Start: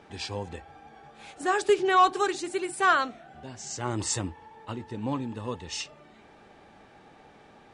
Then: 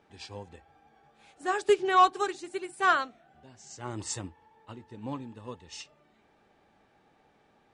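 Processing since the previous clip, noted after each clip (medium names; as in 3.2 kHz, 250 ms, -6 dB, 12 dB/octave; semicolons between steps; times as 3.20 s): upward expansion 1.5:1, over -39 dBFS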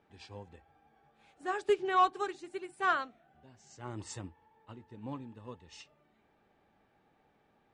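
tone controls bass +2 dB, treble -6 dB; trim -5.5 dB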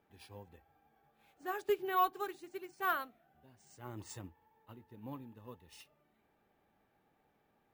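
sample-and-hold 3×; trim -4.5 dB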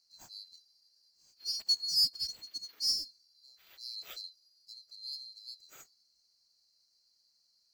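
split-band scrambler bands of 4 kHz; trim +2.5 dB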